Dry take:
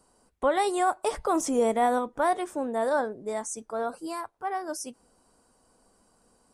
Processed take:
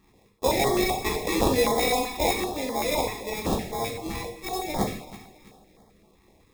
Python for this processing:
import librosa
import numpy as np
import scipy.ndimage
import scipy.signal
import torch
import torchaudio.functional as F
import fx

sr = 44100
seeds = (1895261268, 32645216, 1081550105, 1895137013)

p1 = scipy.signal.sosfilt(scipy.signal.butter(2, 260.0, 'highpass', fs=sr, output='sos'), x)
p2 = fx.band_shelf(p1, sr, hz=4300.0, db=14.0, octaves=1.7)
p3 = fx.sample_hold(p2, sr, seeds[0], rate_hz=1500.0, jitter_pct=0)
p4 = p3 + fx.echo_feedback(p3, sr, ms=330, feedback_pct=38, wet_db=-16.0, dry=0)
p5 = fx.rev_gated(p4, sr, seeds[1], gate_ms=240, shape='falling', drr_db=0.0)
y = fx.filter_held_notch(p5, sr, hz=7.8, low_hz=560.0, high_hz=2600.0)